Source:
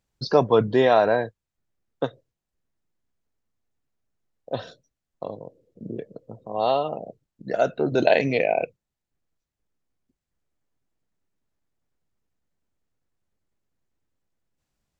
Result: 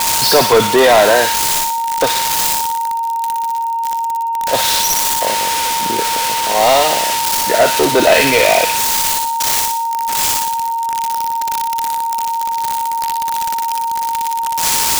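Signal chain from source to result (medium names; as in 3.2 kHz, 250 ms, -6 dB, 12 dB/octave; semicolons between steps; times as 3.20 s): zero-crossing glitches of -14 dBFS; on a send: feedback echo behind a high-pass 60 ms, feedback 45%, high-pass 2.3 kHz, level -3 dB; on the sum: whistle 920 Hz -33 dBFS; overdrive pedal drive 24 dB, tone 5.5 kHz, clips at -2.5 dBFS; trim +1.5 dB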